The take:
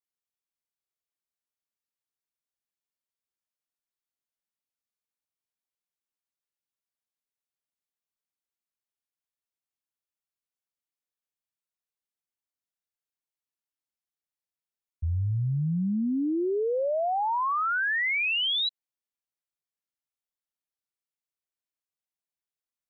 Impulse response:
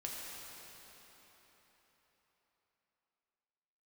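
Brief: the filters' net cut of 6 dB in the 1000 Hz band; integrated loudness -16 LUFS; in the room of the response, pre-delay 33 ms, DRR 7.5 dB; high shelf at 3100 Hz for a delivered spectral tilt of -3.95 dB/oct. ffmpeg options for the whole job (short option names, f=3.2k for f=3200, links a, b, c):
-filter_complex "[0:a]equalizer=f=1k:t=o:g=-7.5,highshelf=f=3.1k:g=-4,asplit=2[a][b];[1:a]atrim=start_sample=2205,adelay=33[c];[b][c]afir=irnorm=-1:irlink=0,volume=-8dB[d];[a][d]amix=inputs=2:normalize=0,volume=12dB"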